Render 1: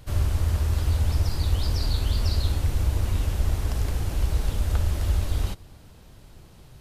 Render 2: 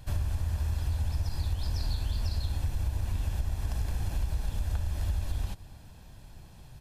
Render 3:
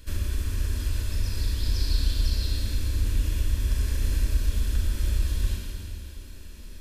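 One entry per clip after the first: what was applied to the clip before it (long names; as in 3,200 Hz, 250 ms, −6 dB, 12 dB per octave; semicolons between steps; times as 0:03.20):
comb filter 1.2 ms, depth 40%; downward compressor, threshold −23 dBFS, peak gain reduction 10 dB; level −3 dB
phaser with its sweep stopped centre 320 Hz, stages 4; convolution reverb RT60 2.6 s, pre-delay 29 ms, DRR −2.5 dB; level +4.5 dB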